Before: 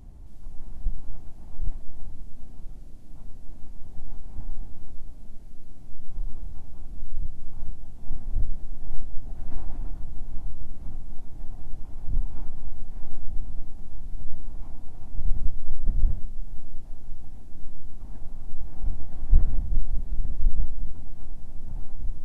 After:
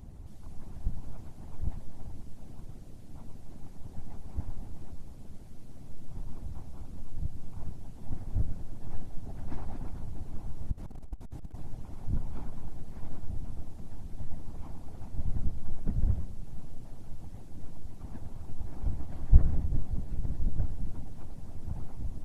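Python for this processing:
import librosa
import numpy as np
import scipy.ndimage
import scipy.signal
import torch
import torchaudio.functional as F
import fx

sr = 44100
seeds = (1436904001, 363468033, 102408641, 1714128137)

y = fx.clip_hard(x, sr, threshold_db=-28.5, at=(10.71, 11.56))
y = fx.hpss(y, sr, part='harmonic', gain_db=-16)
y = fx.echo_feedback(y, sr, ms=102, feedback_pct=49, wet_db=-12.5)
y = y * librosa.db_to_amplitude(6.5)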